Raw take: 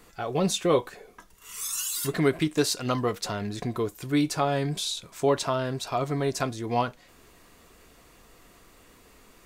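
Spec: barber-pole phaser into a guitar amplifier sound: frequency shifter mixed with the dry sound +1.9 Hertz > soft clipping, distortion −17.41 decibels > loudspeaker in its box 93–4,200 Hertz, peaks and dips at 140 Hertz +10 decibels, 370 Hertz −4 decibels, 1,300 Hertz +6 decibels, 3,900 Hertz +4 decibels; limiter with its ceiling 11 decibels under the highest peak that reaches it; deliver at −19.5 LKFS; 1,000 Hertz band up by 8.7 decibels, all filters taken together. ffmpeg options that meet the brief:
ffmpeg -i in.wav -filter_complex "[0:a]equalizer=frequency=1000:width_type=o:gain=9,alimiter=limit=-17dB:level=0:latency=1,asplit=2[link_01][link_02];[link_02]afreqshift=1.9[link_03];[link_01][link_03]amix=inputs=2:normalize=1,asoftclip=threshold=-22.5dB,highpass=93,equalizer=frequency=140:width_type=q:width=4:gain=10,equalizer=frequency=370:width_type=q:width=4:gain=-4,equalizer=frequency=1300:width_type=q:width=4:gain=6,equalizer=frequency=3900:width_type=q:width=4:gain=4,lowpass=frequency=4200:width=0.5412,lowpass=frequency=4200:width=1.3066,volume=12.5dB" out.wav

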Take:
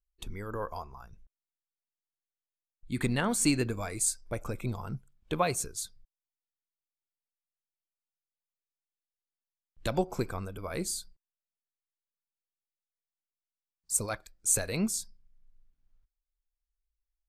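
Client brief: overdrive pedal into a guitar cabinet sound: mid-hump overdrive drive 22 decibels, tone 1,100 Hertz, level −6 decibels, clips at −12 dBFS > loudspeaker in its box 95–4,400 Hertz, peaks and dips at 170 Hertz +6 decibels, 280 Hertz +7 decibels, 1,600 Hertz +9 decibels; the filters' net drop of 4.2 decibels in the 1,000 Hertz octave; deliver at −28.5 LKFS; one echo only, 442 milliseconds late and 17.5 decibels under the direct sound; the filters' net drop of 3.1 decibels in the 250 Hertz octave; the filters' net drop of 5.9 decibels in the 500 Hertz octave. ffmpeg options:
ffmpeg -i in.wav -filter_complex "[0:a]equalizer=frequency=250:width_type=o:gain=-8.5,equalizer=frequency=500:width_type=o:gain=-4.5,equalizer=frequency=1000:width_type=o:gain=-5,aecho=1:1:442:0.133,asplit=2[link_01][link_02];[link_02]highpass=frequency=720:poles=1,volume=22dB,asoftclip=type=tanh:threshold=-12dB[link_03];[link_01][link_03]amix=inputs=2:normalize=0,lowpass=frequency=1100:poles=1,volume=-6dB,highpass=95,equalizer=frequency=170:width_type=q:width=4:gain=6,equalizer=frequency=280:width_type=q:width=4:gain=7,equalizer=frequency=1600:width_type=q:width=4:gain=9,lowpass=frequency=4400:width=0.5412,lowpass=frequency=4400:width=1.3066,volume=2dB" out.wav

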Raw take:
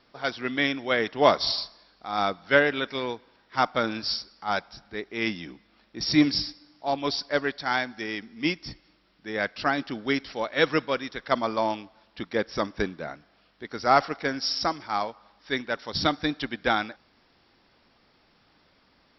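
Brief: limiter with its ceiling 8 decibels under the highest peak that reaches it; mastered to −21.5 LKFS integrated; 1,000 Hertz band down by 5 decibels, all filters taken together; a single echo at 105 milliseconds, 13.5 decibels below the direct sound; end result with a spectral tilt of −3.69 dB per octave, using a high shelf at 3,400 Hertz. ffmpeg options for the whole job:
ffmpeg -i in.wav -af "equalizer=frequency=1000:width_type=o:gain=-8,highshelf=frequency=3400:gain=5,alimiter=limit=-14dB:level=0:latency=1,aecho=1:1:105:0.211,volume=7.5dB" out.wav

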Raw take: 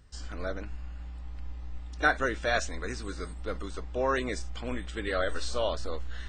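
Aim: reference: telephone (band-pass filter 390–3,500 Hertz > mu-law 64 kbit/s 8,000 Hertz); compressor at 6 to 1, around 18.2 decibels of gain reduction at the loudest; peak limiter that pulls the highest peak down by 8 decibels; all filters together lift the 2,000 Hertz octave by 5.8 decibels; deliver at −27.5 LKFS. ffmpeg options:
ffmpeg -i in.wav -af "equalizer=frequency=2000:width_type=o:gain=8.5,acompressor=threshold=-35dB:ratio=6,alimiter=level_in=5.5dB:limit=-24dB:level=0:latency=1,volume=-5.5dB,highpass=390,lowpass=3500,volume=16.5dB" -ar 8000 -c:a pcm_mulaw out.wav

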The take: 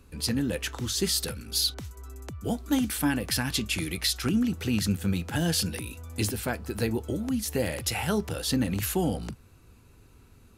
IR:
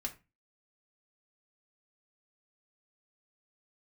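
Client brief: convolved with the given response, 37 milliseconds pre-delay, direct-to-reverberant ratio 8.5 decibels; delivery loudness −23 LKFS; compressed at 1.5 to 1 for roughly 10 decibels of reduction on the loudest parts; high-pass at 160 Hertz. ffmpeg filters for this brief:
-filter_complex "[0:a]highpass=160,acompressor=threshold=-51dB:ratio=1.5,asplit=2[link_01][link_02];[1:a]atrim=start_sample=2205,adelay=37[link_03];[link_02][link_03]afir=irnorm=-1:irlink=0,volume=-8.5dB[link_04];[link_01][link_04]amix=inputs=2:normalize=0,volume=14.5dB"

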